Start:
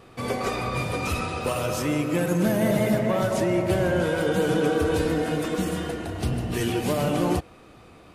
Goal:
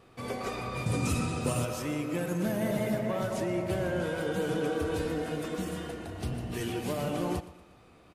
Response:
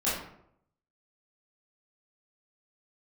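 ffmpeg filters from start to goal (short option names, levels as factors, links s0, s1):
-filter_complex "[0:a]asettb=1/sr,asplit=3[s0][s1][s2];[s0]atrim=end=0.864[s3];[s1]atrim=start=0.86:end=1.65,asetpts=PTS-STARTPTS,afade=t=in:d=0.004:c=qsin,afade=t=out:st=0.786:d=0.004:c=qsin,equalizer=f=125:t=o:w=1:g=11,equalizer=f=250:t=o:w=1:g=8,equalizer=f=8000:t=o:w=1:g=11[s4];[s2]atrim=start=1.646[s5];[s3][s4]acrossfade=d=0.004:c1=hsin:c2=qsin[s6];[s6][s5]acrossfade=d=0.004:c1=qsin:c2=hsin,aecho=1:1:118|236|354|472:0.141|0.065|0.0299|0.0137,volume=0.398"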